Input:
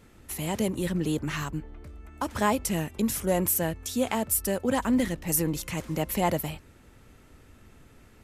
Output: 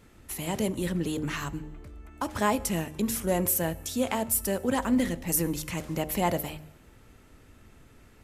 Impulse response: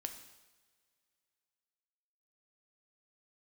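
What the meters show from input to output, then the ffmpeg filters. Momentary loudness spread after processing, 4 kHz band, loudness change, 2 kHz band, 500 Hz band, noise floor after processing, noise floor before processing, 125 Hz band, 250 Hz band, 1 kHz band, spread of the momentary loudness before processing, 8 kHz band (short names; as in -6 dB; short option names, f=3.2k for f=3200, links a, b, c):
12 LU, -0.5 dB, -1.0 dB, -0.5 dB, -1.0 dB, -56 dBFS, -55 dBFS, -1.5 dB, -1.0 dB, -0.5 dB, 11 LU, -0.5 dB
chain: -filter_complex "[0:a]bandreject=f=76.39:t=h:w=4,bandreject=f=152.78:t=h:w=4,bandreject=f=229.17:t=h:w=4,bandreject=f=305.56:t=h:w=4,bandreject=f=381.95:t=h:w=4,bandreject=f=458.34:t=h:w=4,bandreject=f=534.73:t=h:w=4,bandreject=f=611.12:t=h:w=4,bandreject=f=687.51:t=h:w=4,bandreject=f=763.9:t=h:w=4,bandreject=f=840.29:t=h:w=4,asplit=2[a][b];[1:a]atrim=start_sample=2205[c];[b][c]afir=irnorm=-1:irlink=0,volume=-7dB[d];[a][d]amix=inputs=2:normalize=0,volume=-3dB"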